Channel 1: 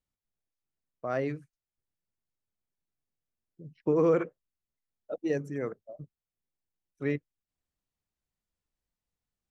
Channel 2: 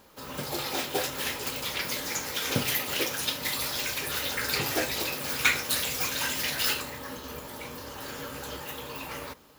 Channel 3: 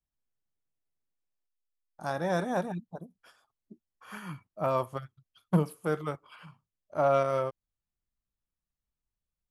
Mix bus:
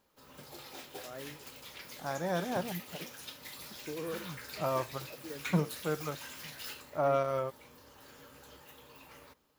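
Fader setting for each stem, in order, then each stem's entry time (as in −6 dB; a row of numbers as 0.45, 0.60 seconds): −15.5, −16.5, −4.0 decibels; 0.00, 0.00, 0.00 seconds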